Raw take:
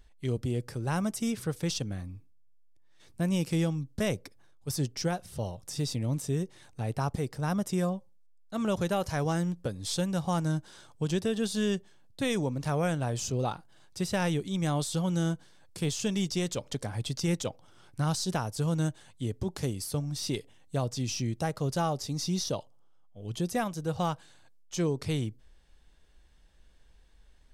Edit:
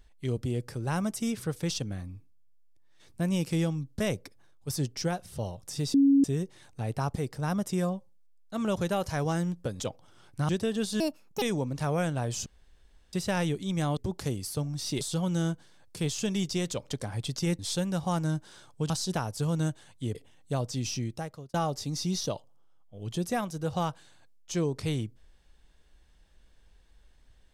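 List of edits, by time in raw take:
5.94–6.24 s: bleep 277 Hz -17 dBFS
9.80–11.11 s: swap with 17.40–18.09 s
11.62–12.27 s: speed 155%
13.31–13.98 s: room tone
19.34–20.38 s: move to 14.82 s
21.16–21.77 s: fade out

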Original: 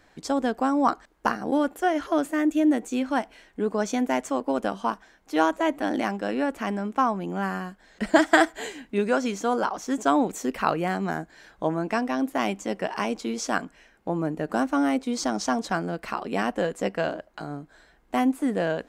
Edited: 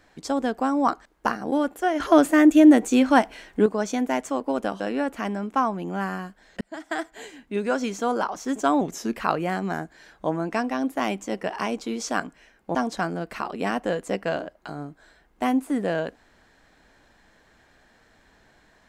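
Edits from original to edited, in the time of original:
2.00–3.66 s: gain +8 dB
4.80–6.22 s: delete
8.03–9.29 s: fade in
10.23–10.55 s: speed 89%
14.13–15.47 s: delete

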